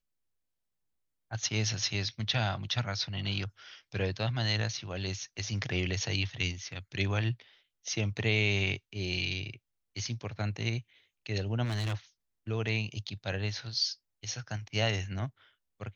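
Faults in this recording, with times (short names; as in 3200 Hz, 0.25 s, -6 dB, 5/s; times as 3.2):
11.64–11.95 clipped -29.5 dBFS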